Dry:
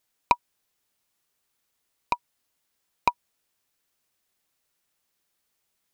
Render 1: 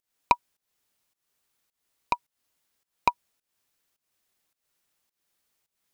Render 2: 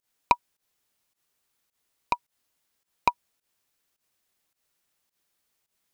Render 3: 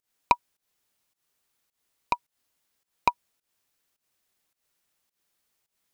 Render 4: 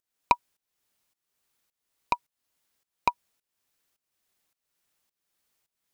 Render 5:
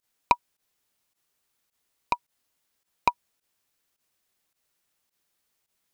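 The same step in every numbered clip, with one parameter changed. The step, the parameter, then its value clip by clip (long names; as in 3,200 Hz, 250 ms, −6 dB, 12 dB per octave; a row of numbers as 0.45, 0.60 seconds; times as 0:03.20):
fake sidechain pumping, release: 266, 110, 175, 465, 70 milliseconds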